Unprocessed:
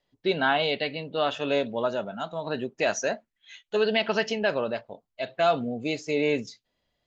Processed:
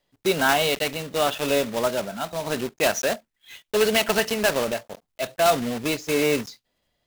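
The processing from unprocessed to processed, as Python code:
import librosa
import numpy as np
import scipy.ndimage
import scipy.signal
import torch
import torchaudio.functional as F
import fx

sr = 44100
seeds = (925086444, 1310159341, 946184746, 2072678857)

y = fx.block_float(x, sr, bits=3)
y = F.gain(torch.from_numpy(y), 3.0).numpy()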